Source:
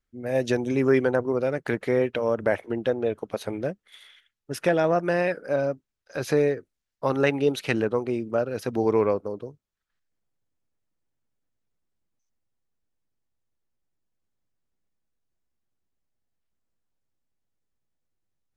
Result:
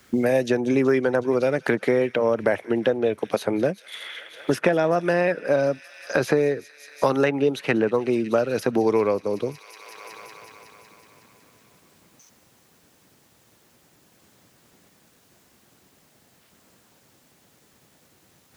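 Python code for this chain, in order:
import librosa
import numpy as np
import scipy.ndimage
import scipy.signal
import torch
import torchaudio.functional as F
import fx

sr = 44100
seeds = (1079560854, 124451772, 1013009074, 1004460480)

y = scipy.signal.sosfilt(scipy.signal.butter(2, 130.0, 'highpass', fs=sr, output='sos'), x)
y = fx.echo_wet_highpass(y, sr, ms=185, feedback_pct=73, hz=2200.0, wet_db=-19.0)
y = fx.band_squash(y, sr, depth_pct=100)
y = y * 10.0 ** (2.5 / 20.0)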